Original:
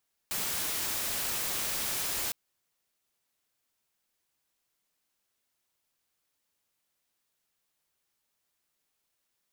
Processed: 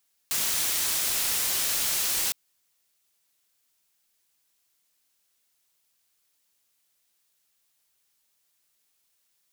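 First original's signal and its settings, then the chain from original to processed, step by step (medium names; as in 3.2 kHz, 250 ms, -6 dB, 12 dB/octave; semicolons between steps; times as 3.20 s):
noise white, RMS -32.5 dBFS 2.01 s
treble shelf 2.3 kHz +9 dB; loudspeaker Doppler distortion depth 0.46 ms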